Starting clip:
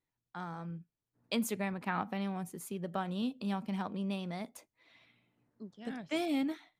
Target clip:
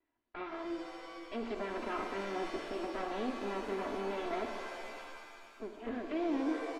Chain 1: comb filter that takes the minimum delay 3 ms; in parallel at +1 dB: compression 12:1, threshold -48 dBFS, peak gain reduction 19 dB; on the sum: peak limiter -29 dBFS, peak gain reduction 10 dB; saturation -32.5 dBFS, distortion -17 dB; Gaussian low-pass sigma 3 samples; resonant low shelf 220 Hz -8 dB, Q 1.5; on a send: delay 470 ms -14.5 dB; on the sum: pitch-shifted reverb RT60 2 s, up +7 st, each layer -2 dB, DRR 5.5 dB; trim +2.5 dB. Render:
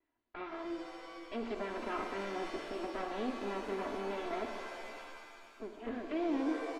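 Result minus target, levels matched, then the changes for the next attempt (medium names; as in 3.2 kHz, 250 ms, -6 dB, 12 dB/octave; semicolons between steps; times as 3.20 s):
compression: peak gain reduction +7 dB
change: compression 12:1, threshold -40.5 dBFS, peak gain reduction 12.5 dB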